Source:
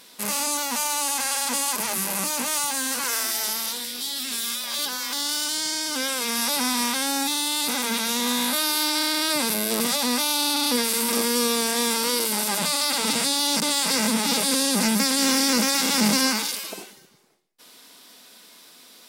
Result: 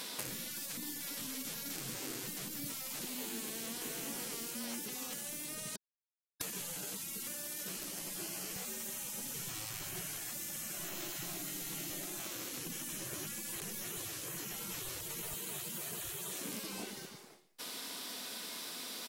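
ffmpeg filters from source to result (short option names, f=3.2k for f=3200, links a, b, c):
-filter_complex "[0:a]asplit=2[a][b];[b]afade=t=in:st=3.42:d=0.01,afade=t=out:st=3.89:d=0.01,aecho=0:1:390|780|1170:0.891251|0.133688|0.0200531[c];[a][c]amix=inputs=2:normalize=0,asettb=1/sr,asplit=3[d][e][f];[d]atrim=end=8.444[g];[e]atrim=start=8.44:end=11.9,asetpts=PTS-STARTPTS,afade=t=in:d=0.004:c=qsin,afade=t=out:st=3.456:d=0.004:c=qsin,aecho=1:1:121:0.501,atrim=end_sample=152586[h];[f]atrim=start=11.896[i];[g][h]acrossfade=d=0.004:c1=hsin:c2=qsin[j];[j][i]acrossfade=d=0.004:c1=qsin:c2=hsin,asettb=1/sr,asplit=3[k][l][m];[k]atrim=end=15.334[n];[l]atrim=start=15.33:end=16.49,asetpts=PTS-STARTPTS,afade=t=in:d=0.004:c=qsin,afade=t=out:st=1.156:d=0.004:c=qsin,highpass=f=150:w=0.5412,highpass=f=150:w=1.3066[o];[m]atrim=start=16.486[p];[n][o]acrossfade=d=0.004:c1=hsin:c2=qsin[q];[q][p]acrossfade=d=0.004:c1=qsin:c2=hsin,asplit=3[r][s][t];[r]atrim=end=5.76,asetpts=PTS-STARTPTS,afade=t=out:st=5.756:d=0.004:c=hsin[u];[s]atrim=start=5.76:end=6.41,asetpts=PTS-STARTPTS,volume=0[v];[t]atrim=start=6.41,asetpts=PTS-STARTPTS,afade=t=in:d=0.004:c=hsin[w];[u][v][w]concat=n=3:v=0:a=1,afftfilt=real='re*lt(hypot(re,im),0.0501)':imag='im*lt(hypot(re,im),0.0501)':win_size=1024:overlap=0.75,acrossover=split=380[x][y];[y]acompressor=threshold=-46dB:ratio=10[z];[x][z]amix=inputs=2:normalize=0,volume=6.5dB"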